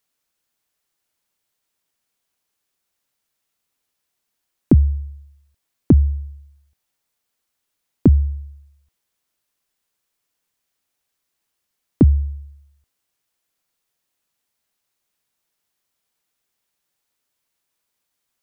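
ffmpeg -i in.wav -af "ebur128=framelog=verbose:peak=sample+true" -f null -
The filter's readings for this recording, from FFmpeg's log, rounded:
Integrated loudness:
  I:         -18.2 LUFS
  Threshold: -31.1 LUFS
Loudness range:
  LRA:         3.0 LU
  Threshold: -44.8 LUFS
  LRA low:   -25.4 LUFS
  LRA high:  -22.3 LUFS
Sample peak:
  Peak:       -3.4 dBFS
True peak:
  Peak:       -3.4 dBFS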